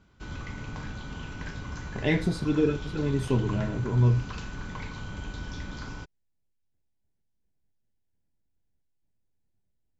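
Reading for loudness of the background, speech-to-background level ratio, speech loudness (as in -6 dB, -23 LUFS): -39.0 LUFS, 12.0 dB, -27.0 LUFS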